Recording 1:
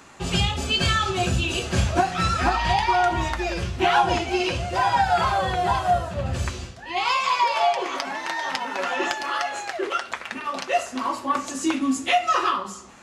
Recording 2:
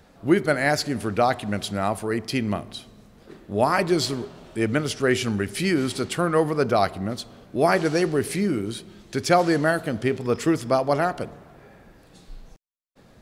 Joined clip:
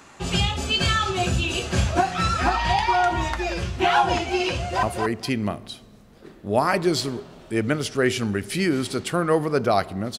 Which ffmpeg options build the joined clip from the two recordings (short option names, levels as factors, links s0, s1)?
-filter_complex "[0:a]apad=whole_dur=10.18,atrim=end=10.18,atrim=end=4.832[s0];[1:a]atrim=start=1.878:end=7.23[s1];[s0][s1]acrossfade=d=0.004:c1=hsin:c2=hsin,asplit=2[s2][s3];[s3]afade=t=in:st=4.57:d=0.01,afade=t=out:st=4.83:d=0.01,aecho=0:1:230|460|690:0.562341|0.0843512|0.0126527[s4];[s2][s4]amix=inputs=2:normalize=0"